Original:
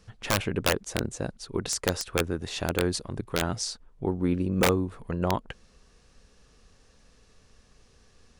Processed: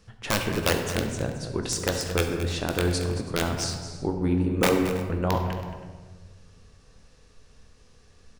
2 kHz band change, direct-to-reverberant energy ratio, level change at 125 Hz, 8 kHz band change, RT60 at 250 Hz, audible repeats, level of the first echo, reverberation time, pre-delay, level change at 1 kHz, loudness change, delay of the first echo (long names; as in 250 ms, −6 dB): +1.5 dB, 3.0 dB, +3.5 dB, +1.0 dB, 1.8 s, 2, −12.5 dB, 1.4 s, 14 ms, +2.0 dB, +2.0 dB, 224 ms